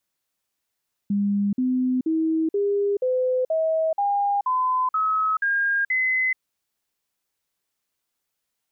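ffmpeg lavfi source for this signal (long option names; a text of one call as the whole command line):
ffmpeg -f lavfi -i "aevalsrc='0.112*clip(min(mod(t,0.48),0.43-mod(t,0.48))/0.005,0,1)*sin(2*PI*202*pow(2,floor(t/0.48)/3)*mod(t,0.48))':duration=5.28:sample_rate=44100" out.wav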